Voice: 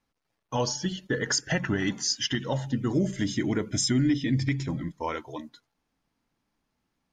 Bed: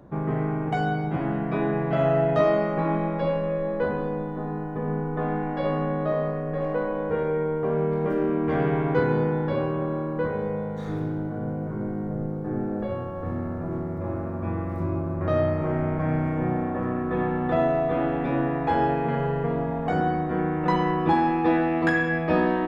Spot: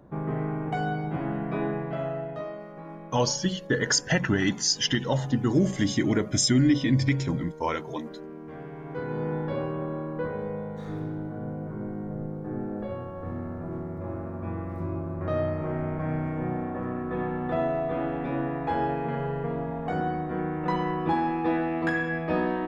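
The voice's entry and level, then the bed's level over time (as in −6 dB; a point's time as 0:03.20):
2.60 s, +3.0 dB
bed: 0:01.65 −3.5 dB
0:02.56 −17 dB
0:08.75 −17 dB
0:09.33 −4.5 dB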